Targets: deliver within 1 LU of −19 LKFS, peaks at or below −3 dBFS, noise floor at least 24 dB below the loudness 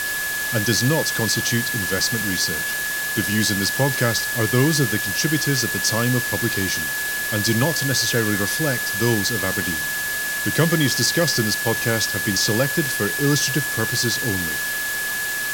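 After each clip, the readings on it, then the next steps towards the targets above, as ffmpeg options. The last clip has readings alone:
interfering tone 1,700 Hz; level of the tone −24 dBFS; background noise floor −25 dBFS; target noise floor −44 dBFS; integrated loudness −20.0 LKFS; sample peak −3.0 dBFS; target loudness −19.0 LKFS
→ -af "bandreject=frequency=1700:width=30"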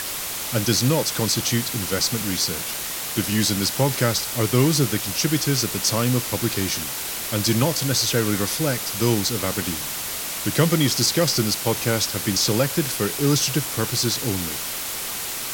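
interfering tone none found; background noise floor −29 dBFS; target noise floor −46 dBFS
→ -af "afftdn=noise_reduction=17:noise_floor=-29"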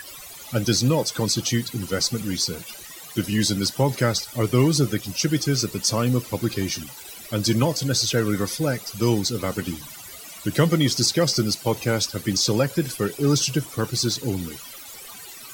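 background noise floor −41 dBFS; target noise floor −47 dBFS
→ -af "afftdn=noise_reduction=6:noise_floor=-41"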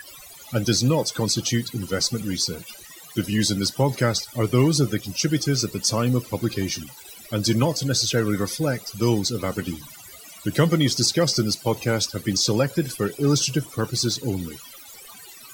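background noise floor −44 dBFS; target noise floor −47 dBFS
→ -af "afftdn=noise_reduction=6:noise_floor=-44"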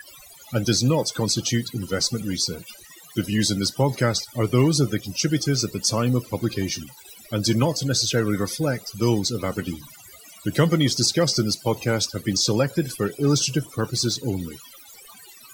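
background noise floor −47 dBFS; integrated loudness −23.0 LKFS; sample peak −4.5 dBFS; target loudness −19.0 LKFS
→ -af "volume=4dB,alimiter=limit=-3dB:level=0:latency=1"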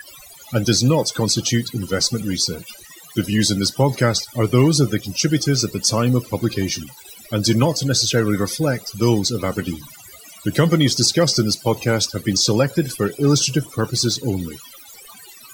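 integrated loudness −19.0 LKFS; sample peak −3.0 dBFS; background noise floor −43 dBFS

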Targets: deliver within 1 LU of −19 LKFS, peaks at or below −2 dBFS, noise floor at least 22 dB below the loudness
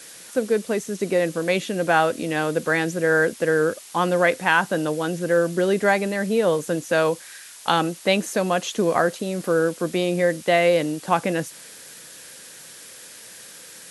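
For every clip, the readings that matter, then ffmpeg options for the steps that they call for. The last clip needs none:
background noise floor −43 dBFS; target noise floor −44 dBFS; integrated loudness −22.0 LKFS; sample peak −4.0 dBFS; target loudness −19.0 LKFS
→ -af "afftdn=noise_reduction=6:noise_floor=-43"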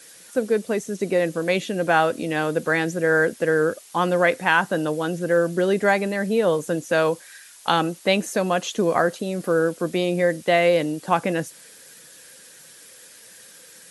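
background noise floor −47 dBFS; integrated loudness −22.0 LKFS; sample peak −4.0 dBFS; target loudness −19.0 LKFS
→ -af "volume=3dB,alimiter=limit=-2dB:level=0:latency=1"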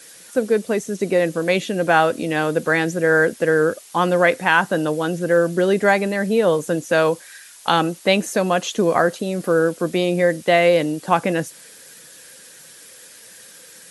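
integrated loudness −19.0 LKFS; sample peak −2.0 dBFS; background noise floor −44 dBFS

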